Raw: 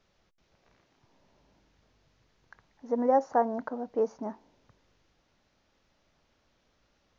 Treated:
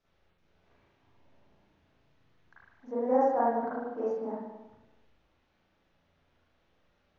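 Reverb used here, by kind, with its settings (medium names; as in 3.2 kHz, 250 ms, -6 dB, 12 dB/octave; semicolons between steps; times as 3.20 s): spring tank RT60 1 s, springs 35/47 ms, chirp 30 ms, DRR -9.5 dB; trim -10.5 dB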